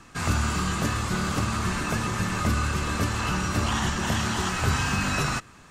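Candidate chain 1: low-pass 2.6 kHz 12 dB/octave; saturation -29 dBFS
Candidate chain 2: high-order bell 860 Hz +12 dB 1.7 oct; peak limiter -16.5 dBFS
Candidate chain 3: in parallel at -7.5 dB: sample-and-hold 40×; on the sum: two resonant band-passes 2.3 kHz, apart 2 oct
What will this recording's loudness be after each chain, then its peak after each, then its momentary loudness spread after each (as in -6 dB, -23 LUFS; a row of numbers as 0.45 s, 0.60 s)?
-32.5 LUFS, -25.0 LUFS, -36.5 LUFS; -29.0 dBFS, -16.5 dBFS, -24.0 dBFS; 1 LU, 1 LU, 2 LU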